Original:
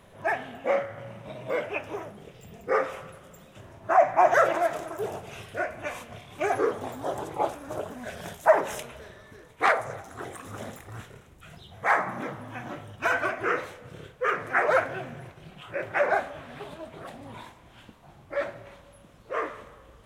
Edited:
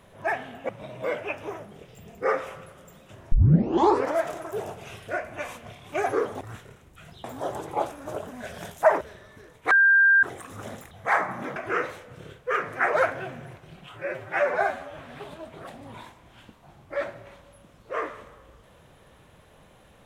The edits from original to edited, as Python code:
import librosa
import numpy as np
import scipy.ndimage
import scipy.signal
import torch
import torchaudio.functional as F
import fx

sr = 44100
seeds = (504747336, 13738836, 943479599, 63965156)

y = fx.edit(x, sr, fx.cut(start_s=0.69, length_s=0.46),
    fx.tape_start(start_s=3.78, length_s=0.89),
    fx.cut(start_s=8.64, length_s=0.32),
    fx.bleep(start_s=9.66, length_s=0.52, hz=1590.0, db=-14.0),
    fx.move(start_s=10.86, length_s=0.83, to_s=6.87),
    fx.cut(start_s=12.34, length_s=0.96),
    fx.stretch_span(start_s=15.7, length_s=0.68, factor=1.5), tone=tone)